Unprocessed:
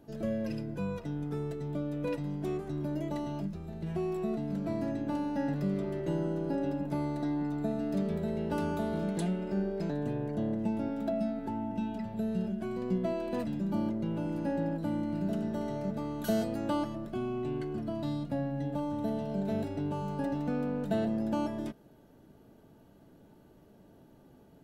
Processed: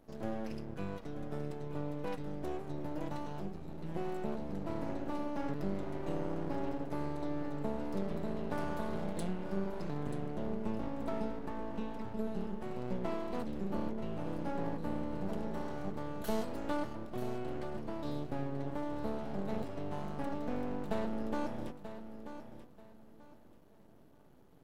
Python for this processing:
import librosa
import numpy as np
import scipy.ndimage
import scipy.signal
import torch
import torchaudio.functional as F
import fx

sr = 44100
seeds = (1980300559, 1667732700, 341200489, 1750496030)

y = fx.highpass(x, sr, hz=110.0, slope=12, at=(12.27, 12.71))
y = np.maximum(y, 0.0)
y = fx.echo_feedback(y, sr, ms=935, feedback_pct=26, wet_db=-11)
y = F.gain(torch.from_numpy(y), -1.5).numpy()